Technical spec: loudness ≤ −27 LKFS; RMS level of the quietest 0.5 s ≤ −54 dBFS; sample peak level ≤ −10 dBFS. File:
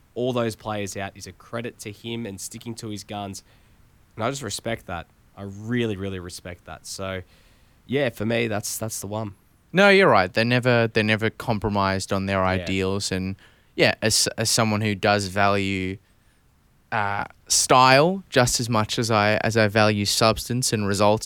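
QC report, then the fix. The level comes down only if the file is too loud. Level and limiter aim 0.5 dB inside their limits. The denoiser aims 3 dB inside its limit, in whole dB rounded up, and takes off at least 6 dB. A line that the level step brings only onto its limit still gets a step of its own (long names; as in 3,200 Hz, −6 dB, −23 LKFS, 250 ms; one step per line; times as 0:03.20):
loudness −22.0 LKFS: out of spec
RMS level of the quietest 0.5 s −59 dBFS: in spec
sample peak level −3.0 dBFS: out of spec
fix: level −5.5 dB
brickwall limiter −10.5 dBFS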